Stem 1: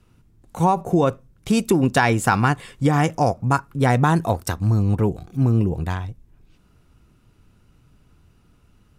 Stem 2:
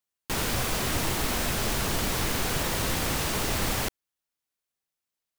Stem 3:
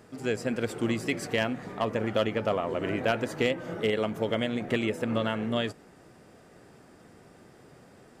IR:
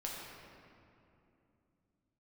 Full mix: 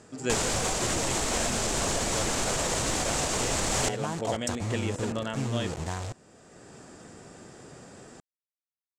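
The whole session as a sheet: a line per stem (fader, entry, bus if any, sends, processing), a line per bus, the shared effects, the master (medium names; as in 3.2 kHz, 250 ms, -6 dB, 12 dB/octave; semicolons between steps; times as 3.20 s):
-9.0 dB, 0.00 s, bus A, no send, compression 5:1, threshold -28 dBFS, peak gain reduction 14 dB; word length cut 6-bit, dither none
+0.5 dB, 0.00 s, bus A, no send, none
+0.5 dB, 0.00 s, no bus, no send, band-stop 2.1 kHz, Q 16; auto duck -10 dB, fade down 0.25 s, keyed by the first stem
bus A: 0.0 dB, peaking EQ 610 Hz +6 dB 1.4 oct; peak limiter -18 dBFS, peak gain reduction 5.5 dB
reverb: none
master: gain riding within 5 dB 0.5 s; resonant low-pass 7.5 kHz, resonance Q 3.5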